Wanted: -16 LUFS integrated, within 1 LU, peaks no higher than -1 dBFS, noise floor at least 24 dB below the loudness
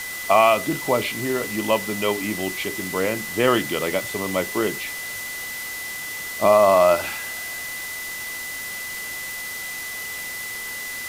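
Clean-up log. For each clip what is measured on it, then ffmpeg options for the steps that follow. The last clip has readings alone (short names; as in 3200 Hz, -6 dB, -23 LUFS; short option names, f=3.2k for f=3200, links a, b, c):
steady tone 2000 Hz; tone level -31 dBFS; noise floor -32 dBFS; noise floor target -47 dBFS; loudness -23.0 LUFS; peak -5.0 dBFS; loudness target -16.0 LUFS
-> -af "bandreject=f=2k:w=30"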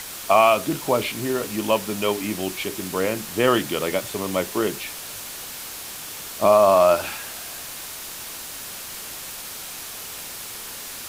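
steady tone none; noise floor -36 dBFS; noise floor target -48 dBFS
-> -af "afftdn=nr=12:nf=-36"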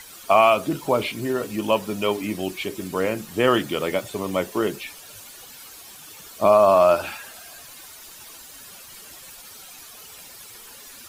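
noise floor -44 dBFS; noise floor target -46 dBFS
-> -af "afftdn=nr=6:nf=-44"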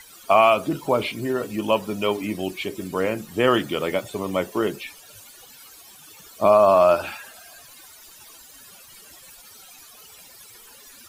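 noise floor -47 dBFS; loudness -21.5 LUFS; peak -5.5 dBFS; loudness target -16.0 LUFS
-> -af "volume=5.5dB,alimiter=limit=-1dB:level=0:latency=1"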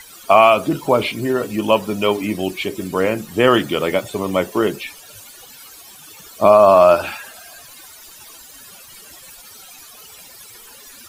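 loudness -16.5 LUFS; peak -1.0 dBFS; noise floor -42 dBFS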